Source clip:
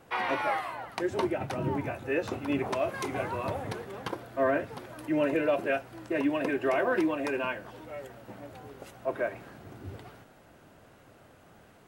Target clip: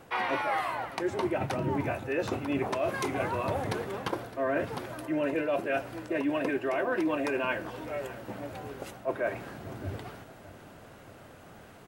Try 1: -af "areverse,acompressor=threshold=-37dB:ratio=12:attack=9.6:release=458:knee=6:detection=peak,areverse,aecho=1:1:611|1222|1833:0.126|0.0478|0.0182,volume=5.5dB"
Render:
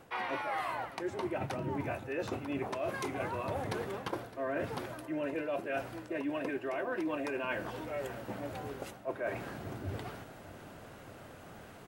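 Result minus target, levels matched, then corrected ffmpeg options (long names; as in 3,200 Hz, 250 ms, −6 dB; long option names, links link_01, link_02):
downward compressor: peak gain reduction +6.5 dB
-af "areverse,acompressor=threshold=-30dB:ratio=12:attack=9.6:release=458:knee=6:detection=peak,areverse,aecho=1:1:611|1222|1833:0.126|0.0478|0.0182,volume=5.5dB"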